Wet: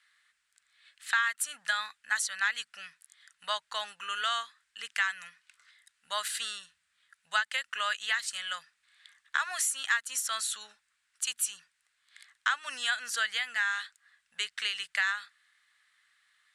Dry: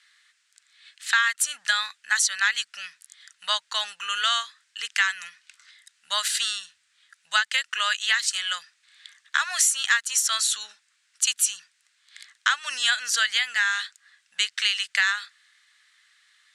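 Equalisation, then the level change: EQ curve 280 Hz 0 dB, 6200 Hz -16 dB, 10000 Hz -9 dB; +3.0 dB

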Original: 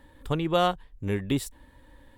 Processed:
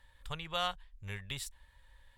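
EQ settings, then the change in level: passive tone stack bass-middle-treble 10-0-10; high shelf 10000 Hz -11.5 dB; 0.0 dB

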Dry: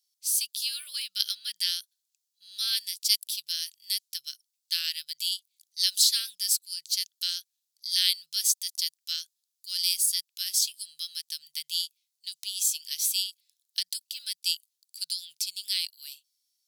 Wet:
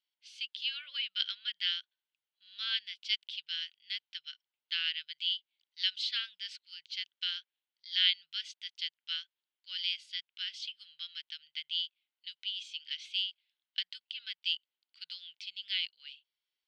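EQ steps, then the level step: speaker cabinet 210–3300 Hz, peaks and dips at 340 Hz +6 dB, 500 Hz +3 dB, 900 Hz +8 dB, 1500 Hz +8 dB, 2100 Hz +7 dB, 3000 Hz +9 dB; -4.0 dB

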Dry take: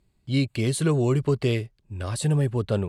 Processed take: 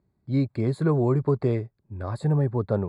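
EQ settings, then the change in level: HPF 80 Hz; dynamic EQ 890 Hz, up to +5 dB, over -42 dBFS, Q 1.7; running mean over 15 samples; 0.0 dB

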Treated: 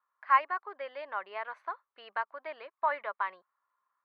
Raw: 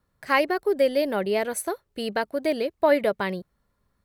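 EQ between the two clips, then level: ladder band-pass 1200 Hz, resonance 65%; air absorption 280 m; tilt +2 dB/oct; +5.5 dB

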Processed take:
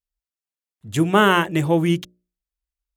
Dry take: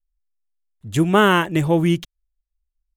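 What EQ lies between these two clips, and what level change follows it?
HPF 42 Hz; low shelf 84 Hz -6 dB; notches 60/120/180/240/300/360/420/480/540/600 Hz; 0.0 dB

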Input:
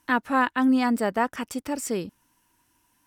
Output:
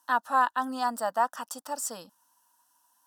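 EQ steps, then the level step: HPF 480 Hz 12 dB/oct; fixed phaser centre 930 Hz, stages 4; +1.5 dB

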